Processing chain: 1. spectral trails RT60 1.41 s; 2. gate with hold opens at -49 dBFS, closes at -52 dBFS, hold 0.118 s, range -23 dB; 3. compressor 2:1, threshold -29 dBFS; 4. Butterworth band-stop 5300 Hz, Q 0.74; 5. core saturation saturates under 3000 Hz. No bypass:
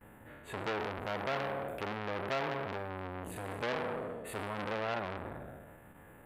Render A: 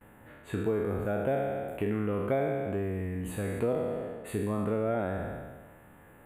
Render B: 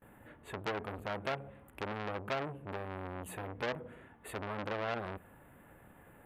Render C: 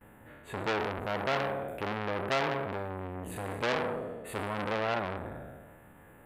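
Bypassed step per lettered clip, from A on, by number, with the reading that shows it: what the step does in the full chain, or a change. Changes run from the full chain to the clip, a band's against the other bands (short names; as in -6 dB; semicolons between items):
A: 5, crest factor change -3.5 dB; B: 1, crest factor change +2.5 dB; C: 3, momentary loudness spread change -3 LU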